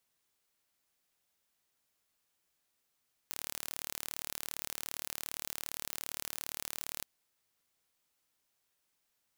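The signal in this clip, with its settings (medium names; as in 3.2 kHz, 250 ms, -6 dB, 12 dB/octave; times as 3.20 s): pulse train 37.4 per s, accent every 0, -11.5 dBFS 3.73 s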